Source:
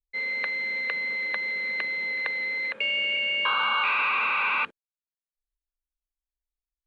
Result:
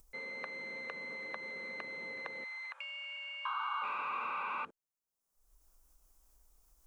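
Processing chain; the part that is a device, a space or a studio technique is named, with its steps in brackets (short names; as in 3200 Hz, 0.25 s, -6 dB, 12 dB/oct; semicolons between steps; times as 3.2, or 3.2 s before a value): 2.44–3.82 steep high-pass 810 Hz 36 dB/oct; upward and downward compression (upward compressor, threshold -47 dBFS; compressor 4:1, threshold -34 dBFS, peak gain reduction 10.5 dB); band shelf 2700 Hz -11 dB; gain +1.5 dB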